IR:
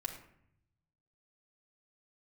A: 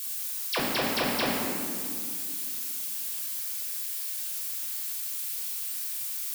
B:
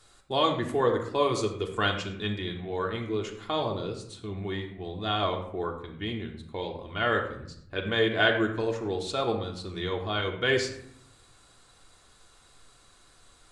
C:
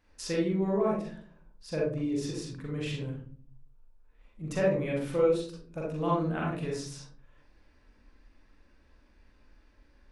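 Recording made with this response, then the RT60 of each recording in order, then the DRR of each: B; 2.3, 0.70, 0.45 s; -5.5, 0.5, -4.5 dB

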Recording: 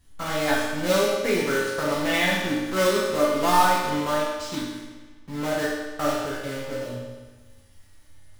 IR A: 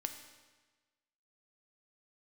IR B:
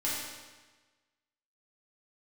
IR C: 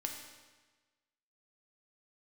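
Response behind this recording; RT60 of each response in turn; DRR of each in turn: B; 1.3, 1.3, 1.3 s; 6.0, -8.5, 1.5 dB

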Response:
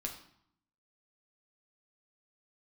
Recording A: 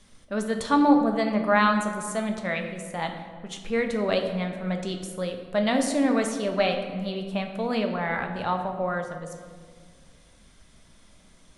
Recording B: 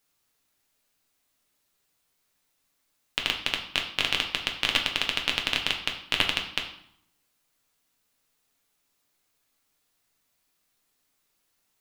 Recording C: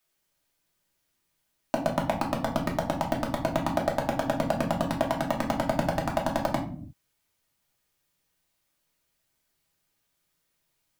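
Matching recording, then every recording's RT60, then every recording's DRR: B; 1.7, 0.70, 0.50 s; 3.5, 1.5, -1.0 dB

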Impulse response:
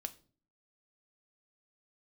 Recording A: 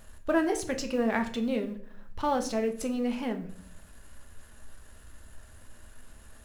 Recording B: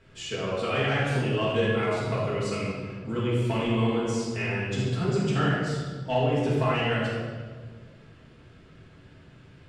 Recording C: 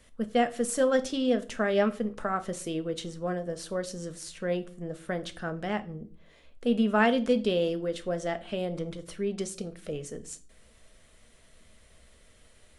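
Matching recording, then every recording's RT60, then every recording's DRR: C; 0.60, 1.6, 0.45 s; 5.5, -8.0, 8.5 dB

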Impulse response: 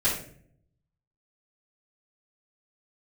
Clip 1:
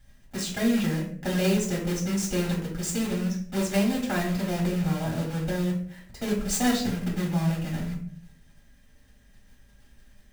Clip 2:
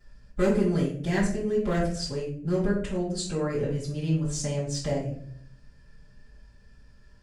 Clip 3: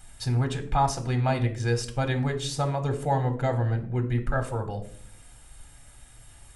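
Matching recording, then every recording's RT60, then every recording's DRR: 2; 0.55 s, 0.55 s, not exponential; -3.5, -10.5, 5.5 dB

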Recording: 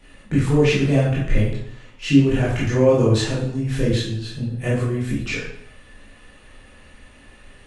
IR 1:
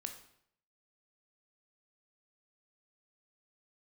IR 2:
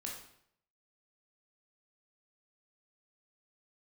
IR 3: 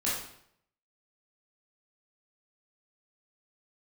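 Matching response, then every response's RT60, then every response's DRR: 3; 0.70, 0.70, 0.70 s; 5.0, -2.0, -8.0 dB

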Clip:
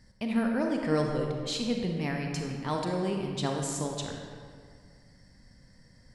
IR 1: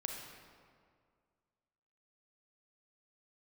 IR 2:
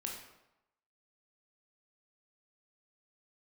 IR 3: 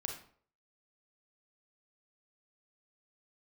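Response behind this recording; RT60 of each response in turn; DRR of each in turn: 1; 2.0, 0.90, 0.55 s; 1.5, -0.5, 2.0 dB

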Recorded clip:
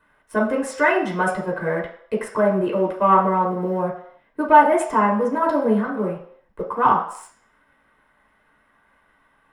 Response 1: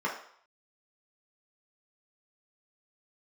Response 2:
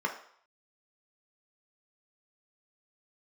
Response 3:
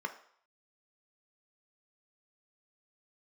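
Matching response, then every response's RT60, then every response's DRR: 1; 0.60, 0.60, 0.60 s; -3.5, 1.5, 6.0 dB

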